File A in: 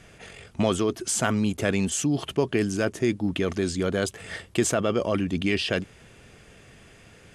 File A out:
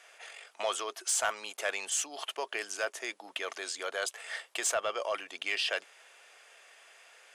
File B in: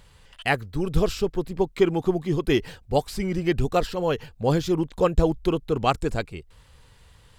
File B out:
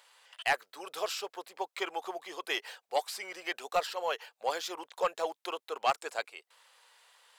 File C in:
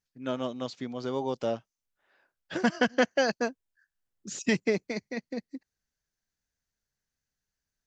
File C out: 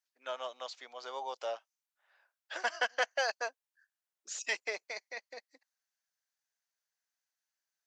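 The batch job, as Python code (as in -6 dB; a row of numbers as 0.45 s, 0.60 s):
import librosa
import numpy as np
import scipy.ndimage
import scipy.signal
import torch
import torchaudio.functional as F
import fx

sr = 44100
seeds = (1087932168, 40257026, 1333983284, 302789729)

y = scipy.signal.sosfilt(scipy.signal.butter(4, 630.0, 'highpass', fs=sr, output='sos'), x)
y = 10.0 ** (-16.0 / 20.0) * np.tanh(y / 10.0 ** (-16.0 / 20.0))
y = y * 10.0 ** (-2.0 / 20.0)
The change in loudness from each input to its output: -8.0 LU, -10.0 LU, -6.5 LU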